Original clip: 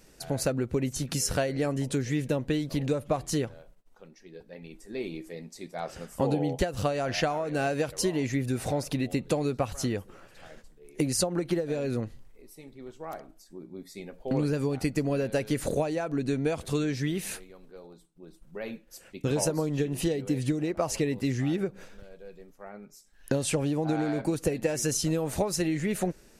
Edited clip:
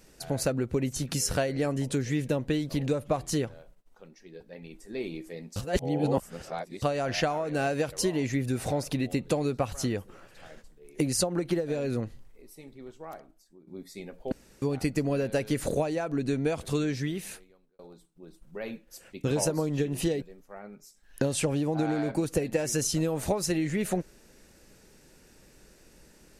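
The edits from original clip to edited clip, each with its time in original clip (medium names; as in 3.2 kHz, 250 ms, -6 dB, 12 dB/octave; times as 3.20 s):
5.56–6.82 s: reverse
12.70–13.67 s: fade out, to -14.5 dB
14.32–14.62 s: room tone
16.89–17.79 s: fade out
20.22–22.32 s: delete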